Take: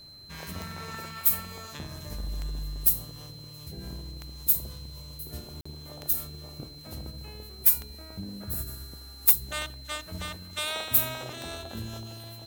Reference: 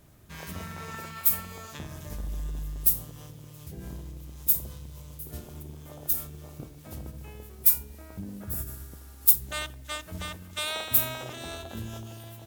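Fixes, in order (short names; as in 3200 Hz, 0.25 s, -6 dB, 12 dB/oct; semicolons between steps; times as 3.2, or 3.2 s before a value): clip repair -9.5 dBFS; de-click; notch 4100 Hz, Q 30; interpolate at 5.61, 45 ms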